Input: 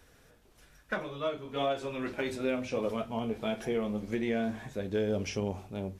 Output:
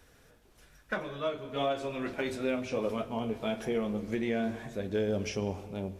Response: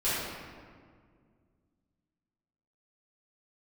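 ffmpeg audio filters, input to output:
-filter_complex "[0:a]asplit=2[s0][s1];[1:a]atrim=start_sample=2205,adelay=105[s2];[s1][s2]afir=irnorm=-1:irlink=0,volume=0.0473[s3];[s0][s3]amix=inputs=2:normalize=0"

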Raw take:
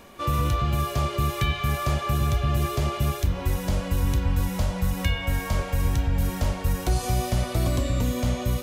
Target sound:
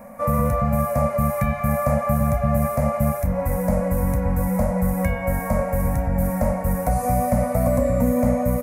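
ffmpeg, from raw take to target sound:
-af "firequalizer=gain_entry='entry(110,0);entry(230,14);entry(360,-26);entry(510,14);entry(900,6);entry(1500,0);entry(2100,3);entry(3100,-25);entry(5000,-12);entry(10000,5)':delay=0.05:min_phase=1"

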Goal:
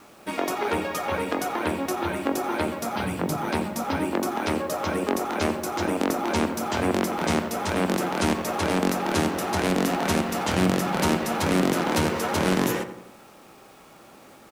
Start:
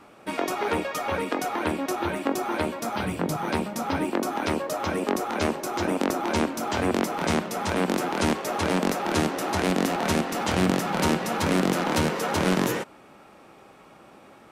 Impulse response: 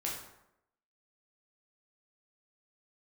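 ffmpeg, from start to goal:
-filter_complex "[0:a]highshelf=f=12000:g=5,acrusher=bits=8:mix=0:aa=0.000001,asplit=2[s0][s1];[s1]adelay=87,lowpass=f=2000:p=1,volume=0.316,asplit=2[s2][s3];[s3]adelay=87,lowpass=f=2000:p=1,volume=0.54,asplit=2[s4][s5];[s5]adelay=87,lowpass=f=2000:p=1,volume=0.54,asplit=2[s6][s7];[s7]adelay=87,lowpass=f=2000:p=1,volume=0.54,asplit=2[s8][s9];[s9]adelay=87,lowpass=f=2000:p=1,volume=0.54,asplit=2[s10][s11];[s11]adelay=87,lowpass=f=2000:p=1,volume=0.54[s12];[s2][s4][s6][s8][s10][s12]amix=inputs=6:normalize=0[s13];[s0][s13]amix=inputs=2:normalize=0"

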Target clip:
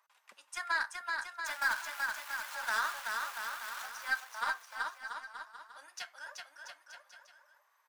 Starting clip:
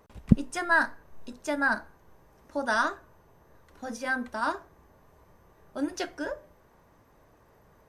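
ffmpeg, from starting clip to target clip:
-filter_complex "[0:a]asettb=1/sr,asplit=3[s0][s1][s2];[s0]atrim=end=1.464[s3];[s1]atrim=start=1.46:end=3.86,asetpts=PTS-STARTPTS,afade=t=in:d=0.004:c=qsin,afade=t=out:st=2.396:d=0.004:c=qsin,aeval=exprs='val(0)+0.5*0.0282*sgn(val(0))':c=same[s4];[s2]atrim=start=3.856[s5];[s3][s4]acrossfade=d=0.004:c1=hsin:c2=qsin[s6];[s6][s5]acrossfade=d=0.004:c1=qsin:c2=hsin,highpass=f=980:w=0.5412,highpass=f=980:w=1.3066,alimiter=limit=0.0944:level=0:latency=1:release=59,aeval=exprs='0.0944*(cos(1*acos(clip(val(0)/0.0944,-1,1)))-cos(1*PI/2))+0.0168*(cos(3*acos(clip(val(0)/0.0944,-1,1)))-cos(3*PI/2))+0.00211*(cos(4*acos(clip(val(0)/0.0944,-1,1)))-cos(4*PI/2))+0.000841*(cos(6*acos(clip(val(0)/0.0944,-1,1)))-cos(6*PI/2))':c=same,flanger=delay=3.1:depth=2.7:regen=-51:speed=1.2:shape=triangular,aecho=1:1:380|684|927.2|1122|1277:0.631|0.398|0.251|0.158|0.1,volume=1.5"

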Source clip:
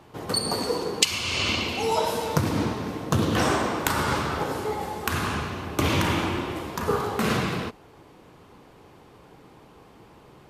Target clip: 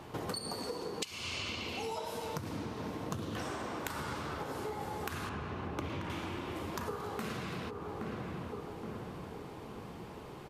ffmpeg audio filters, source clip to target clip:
-filter_complex "[0:a]asettb=1/sr,asplit=3[s0][s1][s2];[s0]atrim=end=5.294[s3];[s1]atrim=start=5.29:end=6.1,asetpts=PTS-STARTPTS,afade=t=in:d=0.004:c=qsin,afade=t=out:st=0.806:d=0.004:c=qsin,lowpass=f=1900:p=1[s4];[s2]atrim=start=6.096[s5];[s3][s4]acrossfade=d=0.004:c1=hsin:c2=qsin[s6];[s6][s5]acrossfade=d=0.004:c1=qsin:c2=hsin,asplit=2[s7][s8];[s8]adelay=821,lowpass=f=1200:p=1,volume=0.188,asplit=2[s9][s10];[s10]adelay=821,lowpass=f=1200:p=1,volume=0.52,asplit=2[s11][s12];[s12]adelay=821,lowpass=f=1200:p=1,volume=0.52,asplit=2[s13][s14];[s14]adelay=821,lowpass=f=1200:p=1,volume=0.52,asplit=2[s15][s16];[s16]adelay=821,lowpass=f=1200:p=1,volume=0.52[s17];[s7][s9][s11][s13][s15][s17]amix=inputs=6:normalize=0,acompressor=threshold=0.0126:ratio=16,volume=1.33"

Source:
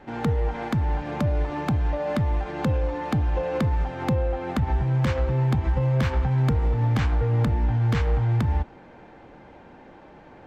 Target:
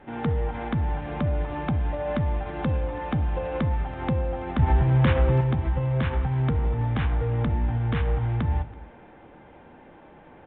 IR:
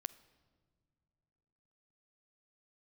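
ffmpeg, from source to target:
-filter_complex "[0:a]asettb=1/sr,asplit=3[s0][s1][s2];[s0]atrim=end=4.594[s3];[s1]atrim=start=4.59:end=5.41,asetpts=PTS-STARTPTS,afade=t=in:d=0.004:c=qsin,afade=t=out:st=0.816:d=0.004:c=qsin,acontrast=47[s4];[s2]atrim=start=5.406[s5];[s3][s4]acrossfade=d=0.004:c1=hsin:c2=qsin[s6];[s6][s5]acrossfade=d=0.004:c1=qsin:c2=hsin[s7];[1:a]atrim=start_sample=2205,afade=t=out:st=0.26:d=0.01,atrim=end_sample=11907,asetrate=33516,aresample=44100[s8];[s7][s8]afir=irnorm=-1:irlink=0,aresample=8000,aresample=44100,asplit=2[s9][s10];[s10]adelay=330,highpass=300,lowpass=3400,asoftclip=type=hard:threshold=0.106,volume=0.0891[s11];[s9][s11]amix=inputs=2:normalize=0"

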